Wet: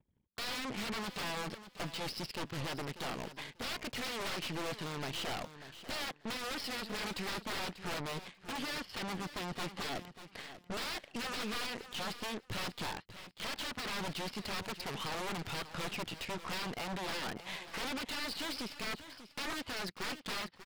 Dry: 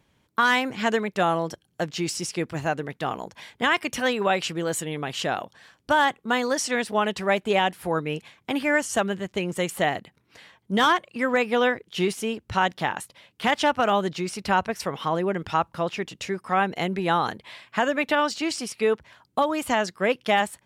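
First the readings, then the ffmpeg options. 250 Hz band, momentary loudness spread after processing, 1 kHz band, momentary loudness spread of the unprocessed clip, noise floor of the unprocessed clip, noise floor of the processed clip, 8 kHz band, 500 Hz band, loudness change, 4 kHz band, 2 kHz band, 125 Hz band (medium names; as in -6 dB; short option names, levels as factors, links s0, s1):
-14.5 dB, 5 LU, -17.5 dB, 9 LU, -68 dBFS, -64 dBFS, -11.0 dB, -19.0 dB, -14.5 dB, -7.5 dB, -14.5 dB, -11.0 dB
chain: -af "aresample=11025,aeval=exprs='0.0398*(abs(mod(val(0)/0.0398+3,4)-2)-1)':c=same,aresample=44100,alimiter=level_in=3.16:limit=0.0631:level=0:latency=1:release=360,volume=0.316,anlmdn=0.0000251,aeval=exprs='0.0211*(cos(1*acos(clip(val(0)/0.0211,-1,1)))-cos(1*PI/2))+0.00596*(cos(4*acos(clip(val(0)/0.0211,-1,1)))-cos(4*PI/2))+0.00596*(cos(5*acos(clip(val(0)/0.0211,-1,1)))-cos(5*PI/2))+0.00211*(cos(6*acos(clip(val(0)/0.0211,-1,1)))-cos(6*PI/2))+0.00596*(cos(7*acos(clip(val(0)/0.0211,-1,1)))-cos(7*PI/2))':c=same,aecho=1:1:591|1182:0.224|0.0403"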